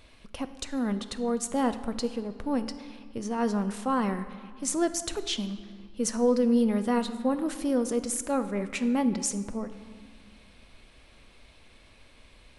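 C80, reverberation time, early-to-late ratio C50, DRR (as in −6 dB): 13.0 dB, 1.9 s, 12.0 dB, 10.0 dB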